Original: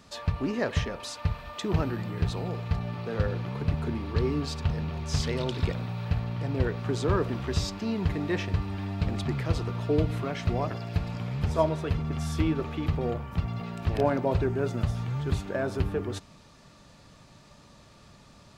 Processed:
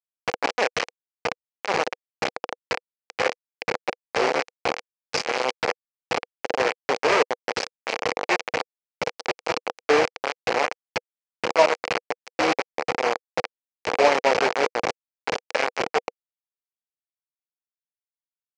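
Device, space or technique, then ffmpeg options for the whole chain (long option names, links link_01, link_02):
hand-held game console: -af "acrusher=bits=3:mix=0:aa=0.000001,highpass=460,equalizer=frequency=490:width_type=q:width=4:gain=8,equalizer=frequency=790:width_type=q:width=4:gain=4,equalizer=frequency=2300:width_type=q:width=4:gain=5,equalizer=frequency=3600:width_type=q:width=4:gain=-7,lowpass=frequency=5700:width=0.5412,lowpass=frequency=5700:width=1.3066,volume=5.5dB"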